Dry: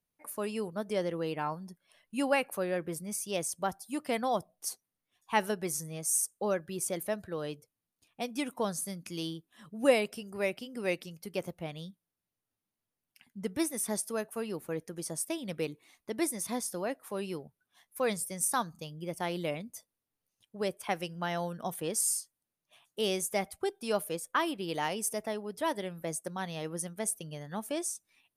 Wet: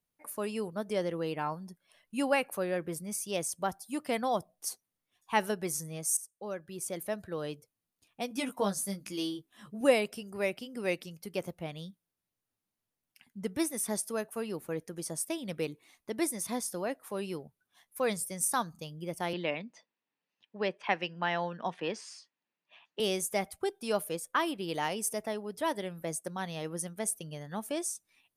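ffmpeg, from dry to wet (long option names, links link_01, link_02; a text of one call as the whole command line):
ffmpeg -i in.wav -filter_complex "[0:a]asettb=1/sr,asplit=3[link_01][link_02][link_03];[link_01]atrim=end=8.294[link_04];[link_02]atrim=start=8.29:end=9.81,asetpts=PTS-STARTPTS,afade=type=in:duration=0.004:curve=qsin,afade=type=out:start_time=1.516:duration=0.004:curve=qsin,asplit=2[link_05][link_06];[link_06]adelay=15,volume=-3.5dB[link_07];[link_05][link_07]amix=inputs=2:normalize=0,atrim=end_sample=67032[link_08];[link_03]atrim=start=9.806[link_09];[link_04][link_08]acrossfade=duration=0.004:curve1=hsin:curve2=qsin[link_10];[link_10][link_09]acrossfade=duration=0.004:curve1=qsin:curve2=hsin,asettb=1/sr,asplit=3[link_11][link_12][link_13];[link_11]atrim=end=19.334[link_14];[link_12]atrim=start=19.33:end=23,asetpts=PTS-STARTPTS,afade=type=in:duration=0.004:curve=qsin,afade=type=out:start_time=3.666:duration=0.004:curve=qsin,highpass=frequency=170:width=0.5412,highpass=frequency=170:width=1.3066,equalizer=frequency=940:width_type=q:width=4:gain=6,equalizer=frequency=1800:width_type=q:width=4:gain=7,equalizer=frequency=2600:width_type=q:width=4:gain=7,lowpass=frequency=4700:width=0.5412,lowpass=frequency=4700:width=1.3066[link_15];[link_13]atrim=start=22.996[link_16];[link_14][link_15]acrossfade=duration=0.004:curve1=hsin:curve2=qsin[link_17];[link_17][link_16]acrossfade=duration=0.004:curve1=qsin:curve2=hsin,asplit=2[link_18][link_19];[link_18]atrim=end=6.17,asetpts=PTS-STARTPTS,afade=type=out:start_time=6.166:duration=0.004:curve=hsin:silence=0.158489[link_20];[link_19]atrim=start=6.17,asetpts=PTS-STARTPTS,afade=type=in:duration=1.16:silence=0.158489[link_21];[link_20][link_21]concat=n=2:v=0:a=1" out.wav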